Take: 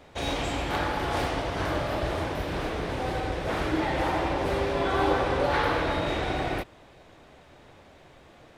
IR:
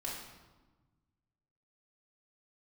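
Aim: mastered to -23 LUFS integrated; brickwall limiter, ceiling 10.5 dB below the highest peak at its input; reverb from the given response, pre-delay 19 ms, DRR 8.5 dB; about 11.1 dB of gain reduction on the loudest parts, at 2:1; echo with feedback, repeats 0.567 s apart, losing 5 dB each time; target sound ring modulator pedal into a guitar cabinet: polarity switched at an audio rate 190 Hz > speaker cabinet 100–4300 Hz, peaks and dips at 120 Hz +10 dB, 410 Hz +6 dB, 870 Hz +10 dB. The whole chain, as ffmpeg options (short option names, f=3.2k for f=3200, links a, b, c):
-filter_complex "[0:a]acompressor=threshold=-41dB:ratio=2,alimiter=level_in=8.5dB:limit=-24dB:level=0:latency=1,volume=-8.5dB,aecho=1:1:567|1134|1701|2268|2835|3402|3969:0.562|0.315|0.176|0.0988|0.0553|0.031|0.0173,asplit=2[a][b];[1:a]atrim=start_sample=2205,adelay=19[c];[b][c]afir=irnorm=-1:irlink=0,volume=-9.5dB[d];[a][d]amix=inputs=2:normalize=0,aeval=exprs='val(0)*sgn(sin(2*PI*190*n/s))':c=same,highpass=100,equalizer=f=120:t=q:w=4:g=10,equalizer=f=410:t=q:w=4:g=6,equalizer=f=870:t=q:w=4:g=10,lowpass=f=4.3k:w=0.5412,lowpass=f=4.3k:w=1.3066,volume=13.5dB"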